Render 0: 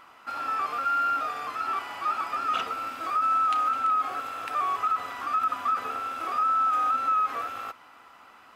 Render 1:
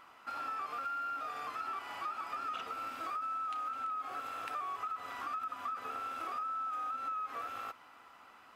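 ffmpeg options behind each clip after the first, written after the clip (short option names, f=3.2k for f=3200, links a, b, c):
-af "acompressor=threshold=-31dB:ratio=6,volume=-5.5dB"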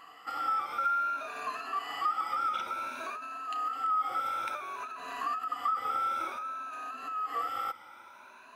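-af "afftfilt=real='re*pow(10,15/40*sin(2*PI*(1.5*log(max(b,1)*sr/1024/100)/log(2)-(0.56)*(pts-256)/sr)))':imag='im*pow(10,15/40*sin(2*PI*(1.5*log(max(b,1)*sr/1024/100)/log(2)-(0.56)*(pts-256)/sr)))':win_size=1024:overlap=0.75,lowshelf=f=120:g=-9.5,volume=3dB"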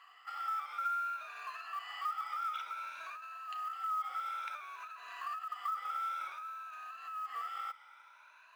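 -af "aemphasis=mode=reproduction:type=50fm,acrusher=bits=8:mode=log:mix=0:aa=0.000001,highpass=1.4k,volume=-2.5dB"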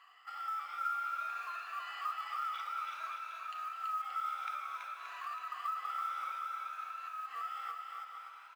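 -af "aecho=1:1:330|577.5|763.1|902.3|1007:0.631|0.398|0.251|0.158|0.1,volume=-2dB"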